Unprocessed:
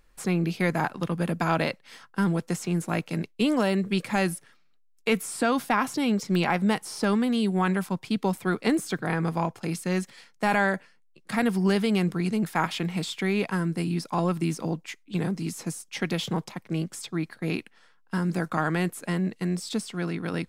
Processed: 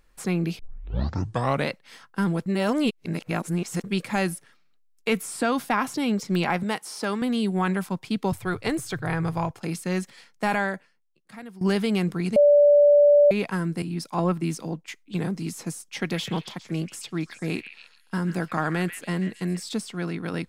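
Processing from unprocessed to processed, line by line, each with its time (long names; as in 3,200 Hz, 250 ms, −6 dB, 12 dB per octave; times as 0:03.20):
0:00.59: tape start 1.11 s
0:02.46–0:03.84: reverse
0:06.63–0:07.22: high-pass filter 380 Hz 6 dB per octave
0:08.32–0:09.51: low shelf with overshoot 150 Hz +11 dB, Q 3
0:10.45–0:11.61: fade out quadratic, to −18 dB
0:12.36–0:13.31: beep over 582 Hz −12 dBFS
0:13.82–0:14.88: multiband upward and downward expander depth 100%
0:15.98–0:19.63: echo through a band-pass that steps 136 ms, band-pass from 2,300 Hz, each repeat 0.7 octaves, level −6 dB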